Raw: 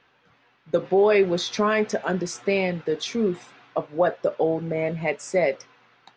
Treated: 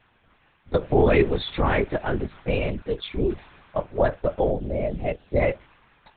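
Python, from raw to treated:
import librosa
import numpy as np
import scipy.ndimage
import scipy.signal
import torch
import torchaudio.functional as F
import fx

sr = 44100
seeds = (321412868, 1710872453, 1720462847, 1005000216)

y = fx.env_flanger(x, sr, rest_ms=5.7, full_db=-20.0, at=(2.39, 3.28), fade=0.02)
y = fx.lpc_vocoder(y, sr, seeds[0], excitation='whisper', order=8)
y = fx.band_shelf(y, sr, hz=1500.0, db=-9.5, octaves=1.7, at=(4.51, 5.4))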